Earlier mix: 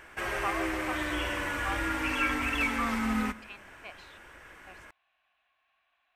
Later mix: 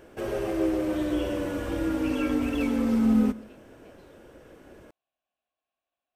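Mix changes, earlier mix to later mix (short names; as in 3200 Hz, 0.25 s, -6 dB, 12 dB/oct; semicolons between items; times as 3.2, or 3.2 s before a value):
speech -11.0 dB; master: add ten-band EQ 125 Hz +5 dB, 250 Hz +8 dB, 500 Hz +10 dB, 1000 Hz -6 dB, 2000 Hz -12 dB, 8000 Hz -4 dB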